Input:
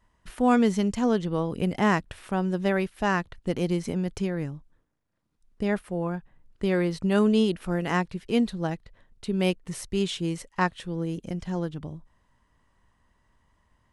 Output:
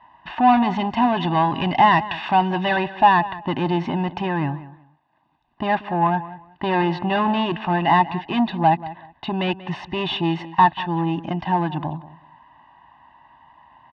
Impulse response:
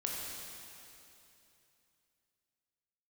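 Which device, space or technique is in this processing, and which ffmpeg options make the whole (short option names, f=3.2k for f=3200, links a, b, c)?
overdrive pedal into a guitar cabinet: -filter_complex "[0:a]asettb=1/sr,asplit=3[a][b][c];[a]atrim=end=1.174[d];[b]atrim=start=1.17:end=2.76,asetpts=PTS-STARTPTS,afade=t=in:d=0.004:c=qsin,afade=t=out:st=1.586:d=0.004:c=qsin,highshelf=f=2.2k:g=10.5[e];[c]atrim=start=2.756[f];[d][e]acrossfade=d=0.004:c1=hsin:c2=qsin[g];[g][f]acrossfade=d=0.004:c1=qsin:c2=hsin,asplit=2[h][i];[i]highpass=f=720:p=1,volume=27dB,asoftclip=type=tanh:threshold=-7.5dB[j];[h][j]amix=inputs=2:normalize=0,lowpass=f=1.4k:p=1,volume=-6dB,highpass=78,equalizer=f=97:t=q:w=4:g=-10,equalizer=f=200:t=q:w=4:g=-10,equalizer=f=510:t=q:w=4:g=-8,equalizer=f=850:t=q:w=4:g=6,equalizer=f=1.2k:t=q:w=4:g=-4,equalizer=f=1.9k:t=q:w=4:g=-7,lowpass=f=3.4k:w=0.5412,lowpass=f=3.4k:w=1.3066,aecho=1:1:1.1:0.9,asplit=2[k][l];[l]adelay=186,lowpass=f=3.5k:p=1,volume=-16dB,asplit=2[m][n];[n]adelay=186,lowpass=f=3.5k:p=1,volume=0.21[o];[k][m][o]amix=inputs=3:normalize=0"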